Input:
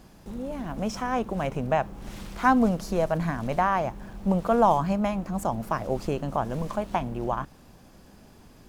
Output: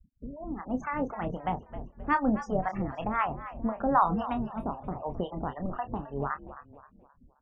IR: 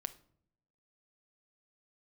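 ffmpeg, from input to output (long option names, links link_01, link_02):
-filter_complex "[0:a]afftfilt=real='re*gte(hypot(re,im),0.0224)':imag='im*gte(hypot(re,im),0.0224)':win_size=1024:overlap=0.75,acrossover=split=4600[link_01][link_02];[link_02]acompressor=threshold=-60dB:ratio=4:attack=1:release=60[link_03];[link_01][link_03]amix=inputs=2:normalize=0,asplit=5[link_04][link_05][link_06][link_07][link_08];[link_05]adelay=309,afreqshift=-66,volume=-13.5dB[link_09];[link_06]adelay=618,afreqshift=-132,volume=-21dB[link_10];[link_07]adelay=927,afreqshift=-198,volume=-28.6dB[link_11];[link_08]adelay=1236,afreqshift=-264,volume=-36.1dB[link_12];[link_04][link_09][link_10][link_11][link_12]amix=inputs=5:normalize=0,acrossover=split=560[link_13][link_14];[link_13]aeval=exprs='val(0)*(1-1/2+1/2*cos(2*PI*3.3*n/s))':channel_layout=same[link_15];[link_14]aeval=exprs='val(0)*(1-1/2-1/2*cos(2*PI*3.3*n/s))':channel_layout=same[link_16];[link_15][link_16]amix=inputs=2:normalize=0,asetrate=51597,aresample=44100,asplit=2[link_17][link_18];[link_18]adelay=28,volume=-9dB[link_19];[link_17][link_19]amix=inputs=2:normalize=0"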